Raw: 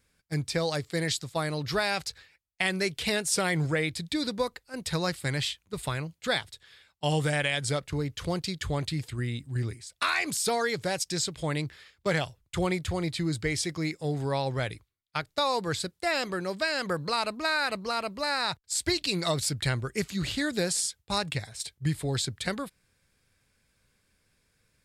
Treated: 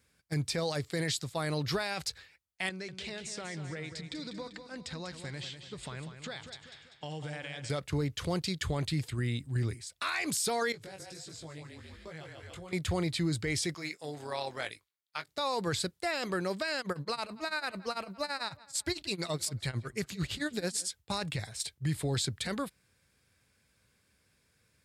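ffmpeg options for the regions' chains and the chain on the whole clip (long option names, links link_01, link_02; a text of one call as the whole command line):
ffmpeg -i in.wav -filter_complex "[0:a]asettb=1/sr,asplit=3[link_01][link_02][link_03];[link_01]atrim=end=2.694[link_04];[link_02]atrim=start=2.69:end=7.7,asetpts=PTS-STARTPTS,afade=type=in:duration=0.004:curve=qsin,afade=type=out:start_time=5.006:duration=0.004:curve=qsin,lowpass=frequency=7500:width=0.5412,lowpass=frequency=7500:width=1.3066,acompressor=threshold=-39dB:ratio=5:attack=3.2:release=140:knee=1:detection=peak,aecho=1:1:195|390|585|780|975:0.355|0.167|0.0784|0.0368|0.0173,atrim=end_sample=220941[link_05];[link_03]atrim=start=7.696[link_06];[link_04][link_05]acrossfade=duration=0.004:curve1=hsin:curve2=qsin[link_07];[link_07][link_06]acrossfade=duration=0.004:curve1=qsin:curve2=hsin,asettb=1/sr,asplit=3[link_08][link_09][link_10];[link_08]atrim=end=10.724[link_11];[link_09]atrim=start=10.72:end=12.73,asetpts=PTS-STARTPTS,afade=type=in:duration=0.004:curve=qsin,afade=type=out:start_time=2.006:duration=0.004:curve=qsin,asplit=5[link_12][link_13][link_14][link_15][link_16];[link_13]adelay=144,afreqshift=-31,volume=-5dB[link_17];[link_14]adelay=288,afreqshift=-62,volume=-13.9dB[link_18];[link_15]adelay=432,afreqshift=-93,volume=-22.7dB[link_19];[link_16]adelay=576,afreqshift=-124,volume=-31.6dB[link_20];[link_12][link_17][link_18][link_19][link_20]amix=inputs=5:normalize=0,atrim=end_sample=88641,acompressor=threshold=-40dB:ratio=8:attack=3.2:release=140:knee=1:detection=peak,flanger=delay=18:depth=3.5:speed=1.5[link_21];[link_10]atrim=start=12.726[link_22];[link_11][link_21]acrossfade=duration=0.004:curve1=hsin:curve2=qsin[link_23];[link_23][link_22]acrossfade=duration=0.004:curve1=qsin:curve2=hsin,asettb=1/sr,asplit=3[link_24][link_25][link_26];[link_24]atrim=end=13.744[link_27];[link_25]atrim=start=13.74:end=15.28,asetpts=PTS-STARTPTS,afade=type=in:duration=0.004:curve=qsin,afade=type=out:start_time=1.536:duration=0.004:curve=qsin,highpass=frequency=840:poles=1,tremolo=f=170:d=0.519,asplit=2[link_28][link_29];[link_29]adelay=20,volume=-11dB[link_30];[link_28][link_30]amix=inputs=2:normalize=0,atrim=end_sample=67914[link_31];[link_26]atrim=start=15.276[link_32];[link_27][link_31]acrossfade=duration=0.004:curve1=hsin:curve2=qsin[link_33];[link_33][link_32]acrossfade=duration=0.004:curve1=qsin:curve2=hsin,asettb=1/sr,asplit=3[link_34][link_35][link_36];[link_34]atrim=end=16.784[link_37];[link_35]atrim=start=16.78:end=20.89,asetpts=PTS-STARTPTS,afade=type=in:duration=0.004:curve=qsin,afade=type=out:start_time=4.106:duration=0.004:curve=qsin,tremolo=f=9:d=0.93,asplit=2[link_38][link_39];[link_39]adelay=176,lowpass=frequency=3300:poles=1,volume=-23.5dB,asplit=2[link_40][link_41];[link_41]adelay=176,lowpass=frequency=3300:poles=1,volume=0.48,asplit=2[link_42][link_43];[link_43]adelay=176,lowpass=frequency=3300:poles=1,volume=0.48[link_44];[link_38][link_40][link_42][link_44]amix=inputs=4:normalize=0,atrim=end_sample=181251[link_45];[link_36]atrim=start=20.886[link_46];[link_37][link_45]acrossfade=duration=0.004:curve1=hsin:curve2=qsin[link_47];[link_47][link_46]acrossfade=duration=0.004:curve1=qsin:curve2=hsin,highpass=frequency=51:width=0.5412,highpass=frequency=51:width=1.3066,alimiter=limit=-22.5dB:level=0:latency=1:release=17" out.wav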